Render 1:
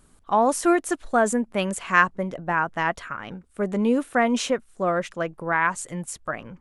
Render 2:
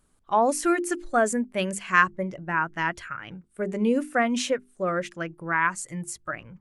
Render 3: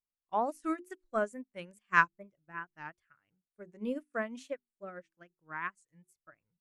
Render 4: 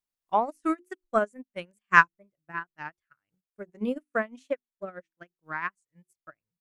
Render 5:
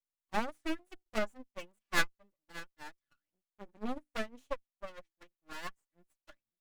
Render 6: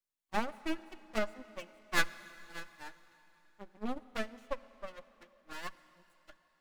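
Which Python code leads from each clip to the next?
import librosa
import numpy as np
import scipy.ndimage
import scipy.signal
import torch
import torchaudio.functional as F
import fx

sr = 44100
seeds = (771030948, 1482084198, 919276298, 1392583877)

y1 = fx.hum_notches(x, sr, base_hz=50, count=8)
y1 = fx.noise_reduce_blind(y1, sr, reduce_db=8)
y1 = y1 * 10.0 ** (-1.0 / 20.0)
y2 = fx.wow_flutter(y1, sr, seeds[0], rate_hz=2.1, depth_cents=120.0)
y2 = fx.upward_expand(y2, sr, threshold_db=-38.0, expansion=2.5)
y2 = y2 * 10.0 ** (-4.0 / 20.0)
y3 = fx.transient(y2, sr, attack_db=7, sustain_db=-10)
y3 = y3 * 10.0 ** (2.5 / 20.0)
y4 = fx.lower_of_two(y3, sr, delay_ms=3.5)
y4 = np.maximum(y4, 0.0)
y4 = y4 * 10.0 ** (-2.5 / 20.0)
y5 = fx.rev_plate(y4, sr, seeds[1], rt60_s=3.7, hf_ratio=0.95, predelay_ms=0, drr_db=16.0)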